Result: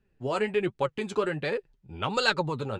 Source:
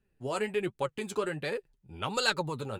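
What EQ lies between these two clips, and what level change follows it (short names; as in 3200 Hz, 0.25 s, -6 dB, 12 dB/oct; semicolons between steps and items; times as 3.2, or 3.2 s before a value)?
air absorption 89 m; +4.5 dB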